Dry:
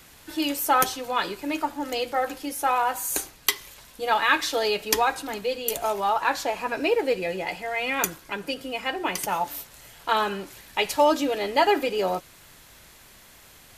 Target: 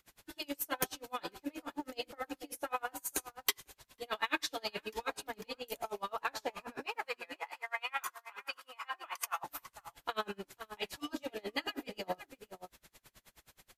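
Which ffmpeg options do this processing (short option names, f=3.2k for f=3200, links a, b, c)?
-filter_complex "[0:a]asettb=1/sr,asplit=3[a][b][c];[a]atrim=end=6.864[d];[b]atrim=start=6.86:end=9.44,asetpts=PTS-STARTPTS,afade=t=in:d=0.004:c=qsin,afade=t=out:st=2.576:d=0.004:c=qsin,highpass=f=1.1k:t=q:w=5.1[e];[c]atrim=start=9.436[f];[d][e]acrossfade=d=0.004:c1=hsin:c2=qsin[g];[g][f]acrossfade=d=0.004:c1=qsin:c2=hsin,afftfilt=real='re*lt(hypot(re,im),0.562)':imag='im*lt(hypot(re,im),0.562)':win_size=1024:overlap=0.75,asoftclip=type=hard:threshold=-13.5dB,asplit=2[h][i];[i]adelay=495.6,volume=-12dB,highshelf=f=4k:g=-11.2[j];[h][j]amix=inputs=2:normalize=0,aeval=exprs='val(0)*pow(10,-33*(0.5-0.5*cos(2*PI*9.4*n/s))/20)':c=same,volume=-5.5dB"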